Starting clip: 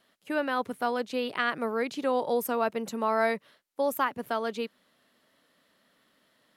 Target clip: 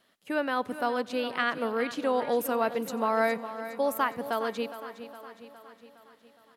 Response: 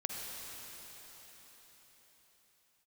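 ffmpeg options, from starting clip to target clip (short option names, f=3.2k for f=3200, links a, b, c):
-filter_complex "[0:a]aecho=1:1:412|824|1236|1648|2060|2472:0.237|0.133|0.0744|0.0416|0.0233|0.0131,asplit=2[a][b];[1:a]atrim=start_sample=2205,adelay=90[c];[b][c]afir=irnorm=-1:irlink=0,volume=-23.5dB[d];[a][d]amix=inputs=2:normalize=0"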